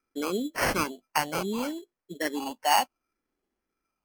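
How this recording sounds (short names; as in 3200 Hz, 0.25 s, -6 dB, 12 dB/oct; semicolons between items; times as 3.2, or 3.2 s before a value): phasing stages 6, 0.65 Hz, lowest notch 380–1200 Hz; aliases and images of a low sample rate 3700 Hz, jitter 0%; MP3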